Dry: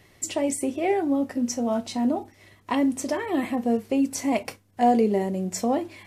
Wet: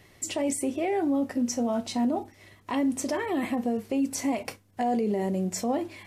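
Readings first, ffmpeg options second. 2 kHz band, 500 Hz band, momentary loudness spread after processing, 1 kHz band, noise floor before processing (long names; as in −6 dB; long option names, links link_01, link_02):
−2.5 dB, −4.0 dB, 6 LU, −5.0 dB, −57 dBFS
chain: -af "alimiter=limit=-19.5dB:level=0:latency=1:release=41"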